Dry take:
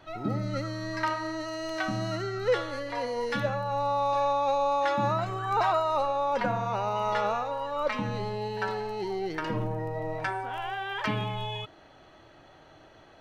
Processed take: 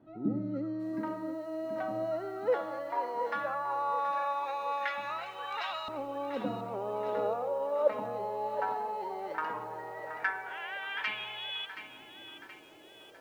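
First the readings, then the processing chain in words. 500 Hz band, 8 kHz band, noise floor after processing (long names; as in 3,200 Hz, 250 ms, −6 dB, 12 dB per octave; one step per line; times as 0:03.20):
−4.0 dB, can't be measured, −53 dBFS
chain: auto-filter band-pass saw up 0.17 Hz 240–3,300 Hz
feedback echo at a low word length 725 ms, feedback 55%, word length 10 bits, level −11 dB
level +3.5 dB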